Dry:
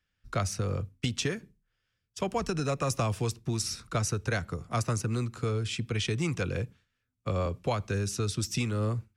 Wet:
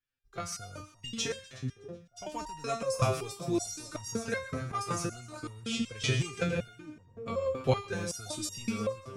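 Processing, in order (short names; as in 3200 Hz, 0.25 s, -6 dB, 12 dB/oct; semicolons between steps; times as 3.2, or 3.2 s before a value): AGC gain up to 13 dB; split-band echo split 1000 Hz, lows 0.585 s, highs 0.124 s, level -10.5 dB; stepped resonator 5.3 Hz 130–940 Hz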